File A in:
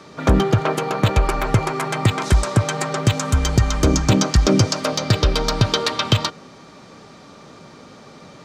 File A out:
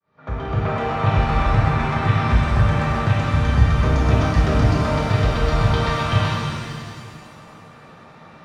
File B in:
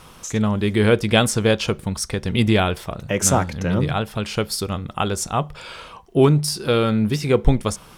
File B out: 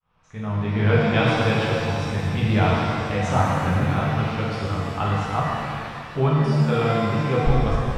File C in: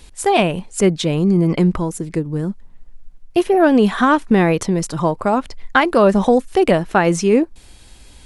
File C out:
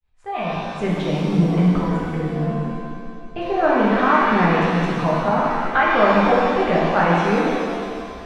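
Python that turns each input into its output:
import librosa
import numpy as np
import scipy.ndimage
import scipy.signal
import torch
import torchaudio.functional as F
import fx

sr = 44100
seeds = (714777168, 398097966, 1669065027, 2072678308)

y = fx.fade_in_head(x, sr, length_s=0.84)
y = scipy.signal.sosfilt(scipy.signal.butter(2, 2000.0, 'lowpass', fs=sr, output='sos'), y)
y = fx.peak_eq(y, sr, hz=330.0, db=-11.5, octaves=1.2)
y = fx.rev_shimmer(y, sr, seeds[0], rt60_s=2.2, semitones=7, shimmer_db=-8, drr_db=-6.0)
y = y * librosa.db_to_amplitude(-4.5)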